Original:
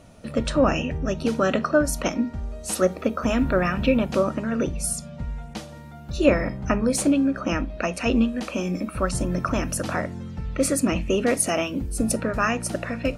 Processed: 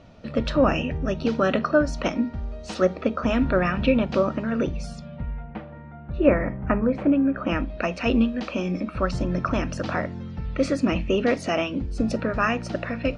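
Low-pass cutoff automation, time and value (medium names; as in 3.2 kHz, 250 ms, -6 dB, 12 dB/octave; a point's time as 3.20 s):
low-pass 24 dB/octave
4.81 s 5 kHz
5.52 s 2.2 kHz
7.22 s 2.2 kHz
7.64 s 5 kHz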